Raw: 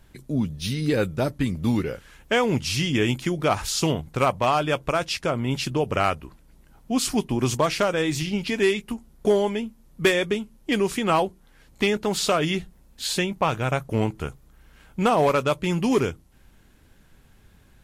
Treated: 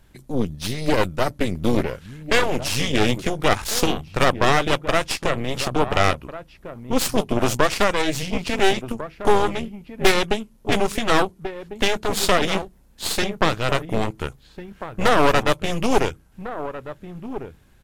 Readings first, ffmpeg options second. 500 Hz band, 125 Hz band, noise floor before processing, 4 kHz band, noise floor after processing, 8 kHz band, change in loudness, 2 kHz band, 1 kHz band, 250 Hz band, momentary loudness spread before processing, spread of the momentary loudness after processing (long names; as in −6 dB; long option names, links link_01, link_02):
+2.0 dB, −0.5 dB, −55 dBFS, +4.0 dB, −53 dBFS, +3.0 dB, +2.0 dB, +5.0 dB, +3.5 dB, 0.0 dB, 7 LU, 15 LU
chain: -filter_complex "[0:a]asplit=2[link_01][link_02];[link_02]adelay=1399,volume=-10dB,highshelf=frequency=4000:gain=-31.5[link_03];[link_01][link_03]amix=inputs=2:normalize=0,aeval=exprs='0.398*(cos(1*acos(clip(val(0)/0.398,-1,1)))-cos(1*PI/2))+0.178*(cos(4*acos(clip(val(0)/0.398,-1,1)))-cos(4*PI/2))+0.02*(cos(8*acos(clip(val(0)/0.398,-1,1)))-cos(8*PI/2))':channel_layout=same"